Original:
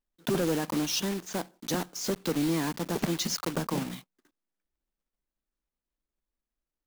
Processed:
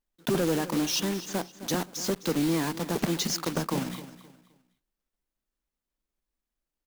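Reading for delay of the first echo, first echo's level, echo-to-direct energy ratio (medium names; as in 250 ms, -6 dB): 261 ms, -15.0 dB, -14.5 dB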